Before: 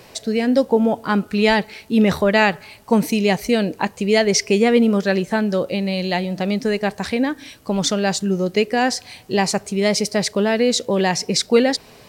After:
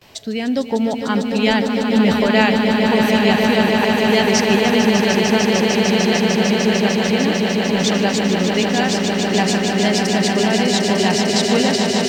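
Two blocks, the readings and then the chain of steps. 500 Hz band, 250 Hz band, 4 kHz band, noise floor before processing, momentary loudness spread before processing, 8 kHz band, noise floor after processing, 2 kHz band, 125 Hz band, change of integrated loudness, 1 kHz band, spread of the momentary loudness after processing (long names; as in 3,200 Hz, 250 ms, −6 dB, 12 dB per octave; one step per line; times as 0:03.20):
+1.5 dB, +3.5 dB, +5.0 dB, −46 dBFS, 7 LU, +2.0 dB, −23 dBFS, +4.0 dB, +3.5 dB, +3.0 dB, +3.0 dB, 4 LU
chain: noise gate with hold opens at −36 dBFS
thirty-one-band graphic EQ 100 Hz +4 dB, 500 Hz −6 dB, 3,150 Hz +6 dB, 10,000 Hz −8 dB
on a send: echo that builds up and dies away 150 ms, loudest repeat 8, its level −7 dB
on the sum: level −2 dB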